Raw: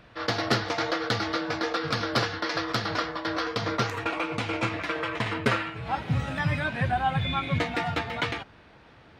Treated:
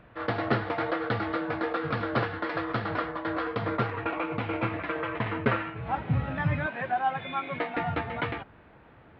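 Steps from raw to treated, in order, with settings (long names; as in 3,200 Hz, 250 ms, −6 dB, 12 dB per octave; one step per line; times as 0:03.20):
0:06.66–0:07.77: high-pass filter 340 Hz 12 dB per octave
noise that follows the level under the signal 24 dB
Gaussian smoothing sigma 3.2 samples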